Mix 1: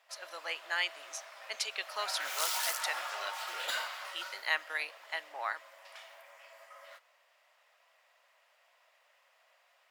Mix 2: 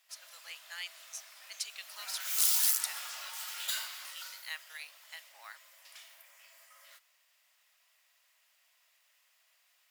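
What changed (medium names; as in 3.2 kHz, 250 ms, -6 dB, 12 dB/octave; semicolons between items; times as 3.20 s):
background +6.5 dB; master: add differentiator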